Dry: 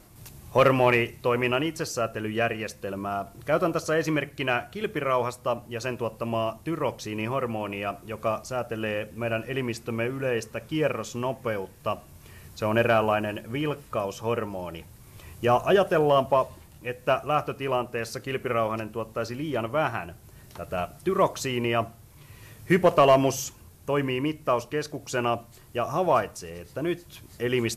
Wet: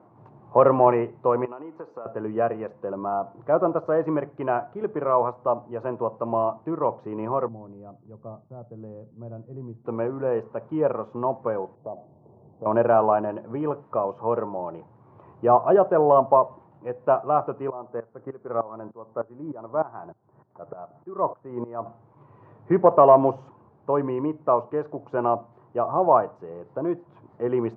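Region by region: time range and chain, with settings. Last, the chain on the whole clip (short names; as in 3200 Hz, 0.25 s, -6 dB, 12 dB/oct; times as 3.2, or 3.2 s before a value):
1.45–2.06 speaker cabinet 270–9400 Hz, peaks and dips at 360 Hz -4 dB, 640 Hz -6 dB, 1700 Hz -4 dB, 3100 Hz -6 dB, 5400 Hz -4 dB, 8100 Hz -9 dB + compressor 12:1, threshold -34 dBFS
7.48–9.85 band-pass 120 Hz, Q 1.5 + gate with hold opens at -44 dBFS, closes at -48 dBFS
11.75–12.66 steep low-pass 800 Hz + compressor 2.5:1, threshold -37 dBFS
17.7–21.86 inverse Chebyshev low-pass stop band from 9700 Hz, stop band 80 dB + dB-ramp tremolo swelling 3.3 Hz, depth 19 dB
whole clip: Chebyshev band-pass 110–980 Hz, order 3; tilt +3.5 dB/oct; gain +7.5 dB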